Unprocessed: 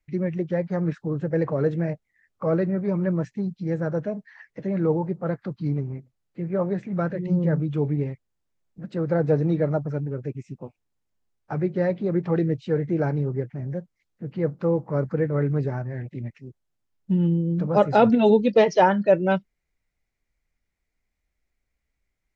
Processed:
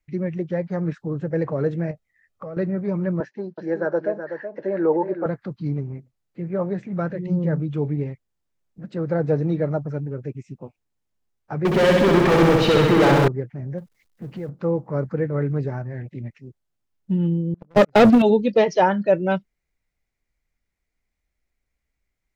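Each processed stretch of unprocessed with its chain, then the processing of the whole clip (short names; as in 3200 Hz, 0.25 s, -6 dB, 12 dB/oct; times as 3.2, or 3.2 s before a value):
1.91–2.57 compressor, threshold -32 dBFS + comb 1.6 ms, depth 32%
3.2–5.26 speaker cabinet 320–5200 Hz, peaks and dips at 360 Hz +9 dB, 570 Hz +8 dB, 900 Hz +7 dB, 1600 Hz +9 dB, 2300 Hz -3 dB, 3500 Hz -4 dB + echo 0.375 s -8.5 dB
11.65–13.28 block floating point 7-bit + overdrive pedal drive 35 dB, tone 3000 Hz, clips at -11 dBFS + flutter echo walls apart 11.2 m, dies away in 1.3 s
13.78–14.49 G.711 law mismatch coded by mu + compressor 3:1, threshold -29 dBFS
17.54–18.22 gate -20 dBFS, range -26 dB + bell 900 Hz -9 dB 0.41 oct + sample leveller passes 3
whole clip: dry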